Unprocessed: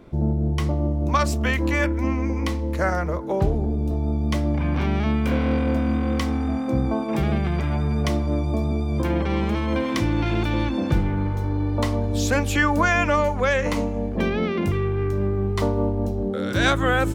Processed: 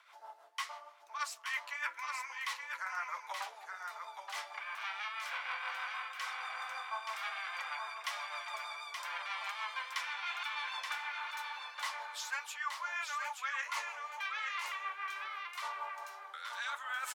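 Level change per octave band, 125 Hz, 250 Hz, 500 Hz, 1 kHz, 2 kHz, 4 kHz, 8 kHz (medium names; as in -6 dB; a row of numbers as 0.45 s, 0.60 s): under -40 dB, under -40 dB, -32.0 dB, -11.0 dB, -10.0 dB, -8.5 dB, -10.0 dB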